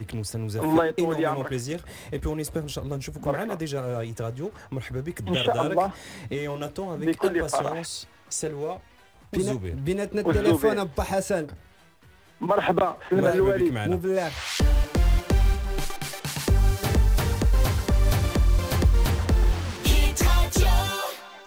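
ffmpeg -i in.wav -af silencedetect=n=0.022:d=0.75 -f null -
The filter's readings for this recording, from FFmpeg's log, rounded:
silence_start: 11.53
silence_end: 12.42 | silence_duration: 0.88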